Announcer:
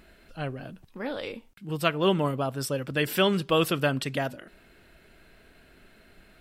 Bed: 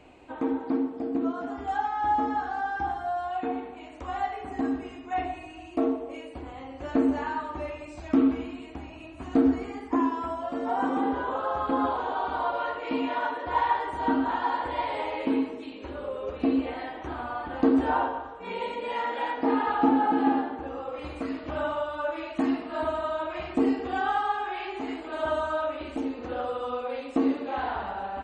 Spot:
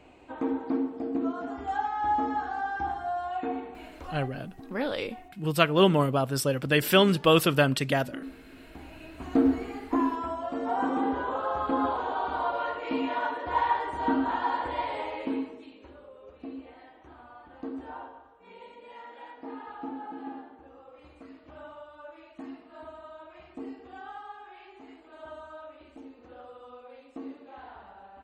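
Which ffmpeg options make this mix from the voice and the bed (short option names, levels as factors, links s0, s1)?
-filter_complex "[0:a]adelay=3750,volume=1.41[s0];[1:a]volume=6.68,afade=t=out:st=3.9:d=0.4:silence=0.133352,afade=t=in:st=8.43:d=0.75:silence=0.125893,afade=t=out:st=14.67:d=1.41:silence=0.177828[s1];[s0][s1]amix=inputs=2:normalize=0"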